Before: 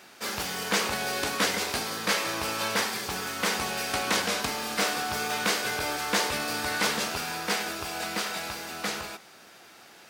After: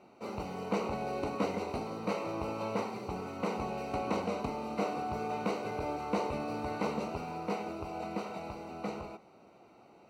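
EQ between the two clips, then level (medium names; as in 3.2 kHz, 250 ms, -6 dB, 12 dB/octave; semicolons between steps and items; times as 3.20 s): boxcar filter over 26 samples; 0.0 dB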